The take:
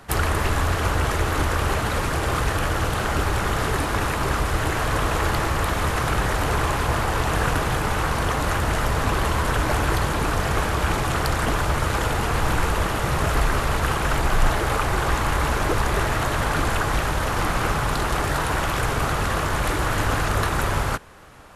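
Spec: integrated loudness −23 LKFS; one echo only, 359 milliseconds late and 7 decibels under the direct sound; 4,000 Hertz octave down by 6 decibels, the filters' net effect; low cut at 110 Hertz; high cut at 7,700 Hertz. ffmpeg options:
ffmpeg -i in.wav -af "highpass=110,lowpass=7700,equalizer=frequency=4000:width_type=o:gain=-8,aecho=1:1:359:0.447,volume=1dB" out.wav

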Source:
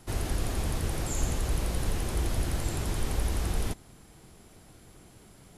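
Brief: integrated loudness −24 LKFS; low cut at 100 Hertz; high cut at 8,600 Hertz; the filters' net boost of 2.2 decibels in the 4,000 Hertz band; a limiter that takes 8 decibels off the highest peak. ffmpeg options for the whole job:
ffmpeg -i in.wav -af "highpass=100,lowpass=8600,equalizer=frequency=4000:width_type=o:gain=3,volume=14.5dB,alimiter=limit=-14.5dB:level=0:latency=1" out.wav

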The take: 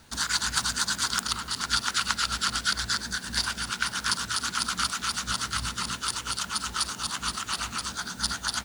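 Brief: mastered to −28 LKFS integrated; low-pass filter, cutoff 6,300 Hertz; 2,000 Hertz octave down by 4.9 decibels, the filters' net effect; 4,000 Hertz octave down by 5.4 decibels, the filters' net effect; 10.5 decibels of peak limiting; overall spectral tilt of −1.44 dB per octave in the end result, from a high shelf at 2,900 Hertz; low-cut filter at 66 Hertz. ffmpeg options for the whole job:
ffmpeg -i in.wav -af "highpass=66,lowpass=6300,equalizer=frequency=2000:width_type=o:gain=-7.5,highshelf=frequency=2900:gain=3,equalizer=frequency=4000:width_type=o:gain=-6.5,volume=7dB,alimiter=limit=-16.5dB:level=0:latency=1" out.wav

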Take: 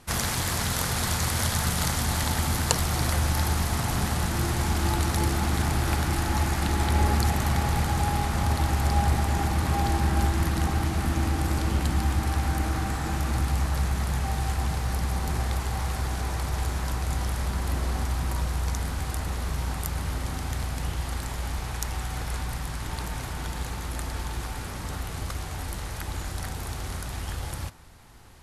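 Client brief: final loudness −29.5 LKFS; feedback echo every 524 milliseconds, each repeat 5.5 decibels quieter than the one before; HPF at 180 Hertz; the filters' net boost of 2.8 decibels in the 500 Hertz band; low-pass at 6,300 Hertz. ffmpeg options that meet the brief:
ffmpeg -i in.wav -af "highpass=180,lowpass=6300,equalizer=frequency=500:width_type=o:gain=4,aecho=1:1:524|1048|1572|2096|2620|3144|3668:0.531|0.281|0.149|0.079|0.0419|0.0222|0.0118,volume=0.5dB" out.wav

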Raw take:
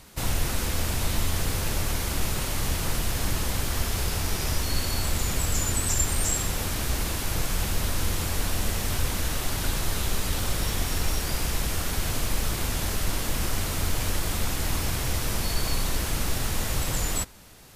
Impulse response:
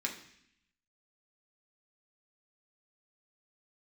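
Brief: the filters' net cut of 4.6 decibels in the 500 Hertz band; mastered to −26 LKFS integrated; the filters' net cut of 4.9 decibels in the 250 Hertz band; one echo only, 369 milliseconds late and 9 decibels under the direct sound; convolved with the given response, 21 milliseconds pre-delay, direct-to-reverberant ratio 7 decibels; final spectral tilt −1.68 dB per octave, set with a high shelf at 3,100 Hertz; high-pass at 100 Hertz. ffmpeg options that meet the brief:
-filter_complex "[0:a]highpass=100,equalizer=frequency=250:width_type=o:gain=-5.5,equalizer=frequency=500:width_type=o:gain=-4.5,highshelf=frequency=3100:gain=3.5,aecho=1:1:369:0.355,asplit=2[link_01][link_02];[1:a]atrim=start_sample=2205,adelay=21[link_03];[link_02][link_03]afir=irnorm=-1:irlink=0,volume=-10dB[link_04];[link_01][link_04]amix=inputs=2:normalize=0"

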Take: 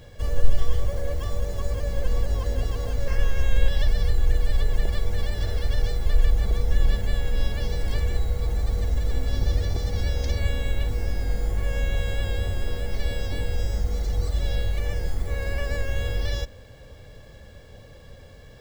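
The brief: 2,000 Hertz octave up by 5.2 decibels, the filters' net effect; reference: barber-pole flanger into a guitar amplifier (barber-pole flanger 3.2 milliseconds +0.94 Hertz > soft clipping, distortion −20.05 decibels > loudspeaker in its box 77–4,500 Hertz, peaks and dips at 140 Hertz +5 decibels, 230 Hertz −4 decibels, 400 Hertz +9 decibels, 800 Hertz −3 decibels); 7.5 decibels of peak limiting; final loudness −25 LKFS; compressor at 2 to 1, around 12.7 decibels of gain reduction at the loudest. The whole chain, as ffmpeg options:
ffmpeg -i in.wav -filter_complex "[0:a]equalizer=frequency=2000:width_type=o:gain=6.5,acompressor=threshold=-30dB:ratio=2,alimiter=limit=-22.5dB:level=0:latency=1,asplit=2[link_01][link_02];[link_02]adelay=3.2,afreqshift=0.94[link_03];[link_01][link_03]amix=inputs=2:normalize=1,asoftclip=threshold=-25.5dB,highpass=77,equalizer=frequency=140:width_type=q:width=4:gain=5,equalizer=frequency=230:width_type=q:width=4:gain=-4,equalizer=frequency=400:width_type=q:width=4:gain=9,equalizer=frequency=800:width_type=q:width=4:gain=-3,lowpass=frequency=4500:width=0.5412,lowpass=frequency=4500:width=1.3066,volume=17.5dB" out.wav

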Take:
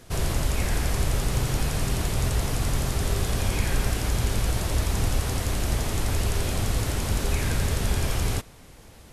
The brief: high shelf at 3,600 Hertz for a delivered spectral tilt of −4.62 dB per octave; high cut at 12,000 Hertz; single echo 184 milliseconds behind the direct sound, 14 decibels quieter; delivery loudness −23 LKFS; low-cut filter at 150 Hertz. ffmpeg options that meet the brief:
ffmpeg -i in.wav -af "highpass=150,lowpass=12000,highshelf=frequency=3600:gain=-7.5,aecho=1:1:184:0.2,volume=9dB" out.wav

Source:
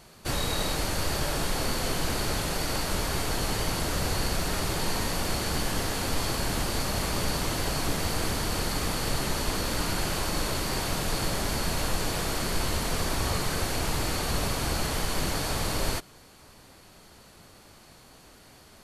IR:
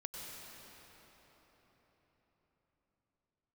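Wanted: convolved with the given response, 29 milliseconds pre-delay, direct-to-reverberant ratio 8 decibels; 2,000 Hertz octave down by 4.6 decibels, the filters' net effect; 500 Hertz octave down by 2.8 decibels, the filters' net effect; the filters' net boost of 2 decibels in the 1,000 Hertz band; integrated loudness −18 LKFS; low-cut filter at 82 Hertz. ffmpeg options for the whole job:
-filter_complex "[0:a]highpass=82,equalizer=frequency=500:width_type=o:gain=-5,equalizer=frequency=1000:width_type=o:gain=6,equalizer=frequency=2000:width_type=o:gain=-8,asplit=2[link_01][link_02];[1:a]atrim=start_sample=2205,adelay=29[link_03];[link_02][link_03]afir=irnorm=-1:irlink=0,volume=-7dB[link_04];[link_01][link_04]amix=inputs=2:normalize=0,volume=11.5dB"

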